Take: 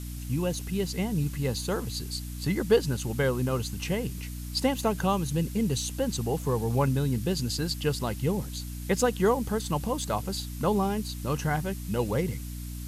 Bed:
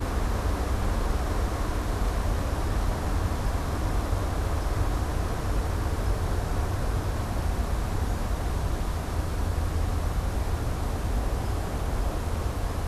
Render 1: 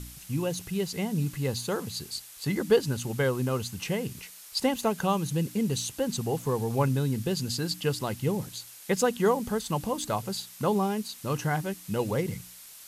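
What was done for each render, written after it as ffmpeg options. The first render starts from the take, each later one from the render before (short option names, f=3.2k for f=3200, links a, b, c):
-af "bandreject=f=60:t=h:w=4,bandreject=f=120:t=h:w=4,bandreject=f=180:t=h:w=4,bandreject=f=240:t=h:w=4,bandreject=f=300:t=h:w=4"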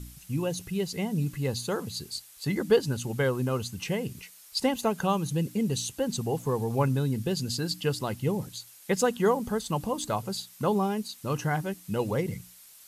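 -af "afftdn=nr=6:nf=-48"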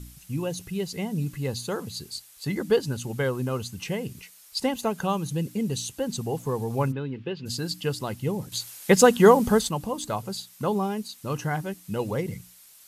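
-filter_complex "[0:a]asplit=3[a][b][c];[a]afade=t=out:st=6.91:d=0.02[d];[b]highpass=180,equalizer=f=210:t=q:w=4:g=-9,equalizer=f=670:t=q:w=4:g=-7,equalizer=f=2.7k:t=q:w=4:g=4,lowpass=f=3.1k:w=0.5412,lowpass=f=3.1k:w=1.3066,afade=t=in:st=6.91:d=0.02,afade=t=out:st=7.45:d=0.02[e];[c]afade=t=in:st=7.45:d=0.02[f];[d][e][f]amix=inputs=3:normalize=0,asplit=3[g][h][i];[g]atrim=end=8.522[j];[h]atrim=start=8.518:end=9.692,asetpts=PTS-STARTPTS,volume=9dB[k];[i]atrim=start=9.688[l];[j][k]acrossfade=d=0.004:c1=hsin:c2=hsin[m];[m][l]acrossfade=d=0.004:c1=hsin:c2=hsin"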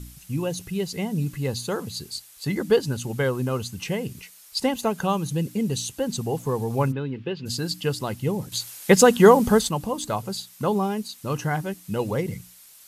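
-af "volume=2.5dB,alimiter=limit=-3dB:level=0:latency=1"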